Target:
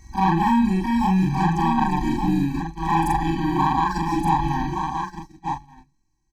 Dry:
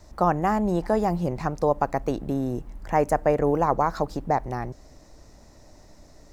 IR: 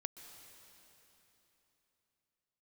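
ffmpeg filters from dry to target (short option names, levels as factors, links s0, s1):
-filter_complex "[0:a]afftfilt=real='re':imag='-im':win_size=4096:overlap=0.75,bandreject=f=259.6:t=h:w=4,bandreject=f=519.2:t=h:w=4,bandreject=f=778.8:t=h:w=4,bandreject=f=1038.4:t=h:w=4,bandreject=f=1298:t=h:w=4,bandreject=f=1557.6:t=h:w=4,bandreject=f=1817.2:t=h:w=4,bandreject=f=2076.8:t=h:w=4,bandreject=f=2336.4:t=h:w=4,bandreject=f=2596:t=h:w=4,bandreject=f=2855.6:t=h:w=4,bandreject=f=3115.2:t=h:w=4,bandreject=f=3374.8:t=h:w=4,bandreject=f=3634.4:t=h:w=4,bandreject=f=3894:t=h:w=4,bandreject=f=4153.6:t=h:w=4,bandreject=f=4413.2:t=h:w=4,bandreject=f=4672.8:t=h:w=4,bandreject=f=4932.4:t=h:w=4,bandreject=f=5192:t=h:w=4,bandreject=f=5451.6:t=h:w=4,bandreject=f=5711.2:t=h:w=4,bandreject=f=5970.8:t=h:w=4,bandreject=f=6230.4:t=h:w=4,bandreject=f=6490:t=h:w=4,bandreject=f=6749.6:t=h:w=4,bandreject=f=7009.2:t=h:w=4,bandreject=f=7268.8:t=h:w=4,bandreject=f=7528.4:t=h:w=4,bandreject=f=7788:t=h:w=4,bandreject=f=8047.6:t=h:w=4,bandreject=f=8307.2:t=h:w=4,bandreject=f=8566.8:t=h:w=4,bandreject=f=8826.4:t=h:w=4,bandreject=f=9086:t=h:w=4,bandreject=f=9345.6:t=h:w=4,bandreject=f=9605.2:t=h:w=4,bandreject=f=9864.8:t=h:w=4,bandreject=f=10124.4:t=h:w=4,aeval=exprs='val(0)+0.0316*sin(2*PI*1900*n/s)':c=same,asplit=2[s0][s1];[s1]alimiter=limit=0.0794:level=0:latency=1:release=127,volume=0.891[s2];[s0][s2]amix=inputs=2:normalize=0,asetrate=48091,aresample=44100,atempo=0.917004,asoftclip=type=tanh:threshold=0.158,aecho=1:1:1171:0.531,agate=range=0.0355:threshold=0.0398:ratio=16:detection=peak,afftfilt=real='re*eq(mod(floor(b*sr/1024/380),2),0)':imag='im*eq(mod(floor(b*sr/1024/380),2),0)':win_size=1024:overlap=0.75,volume=2.37"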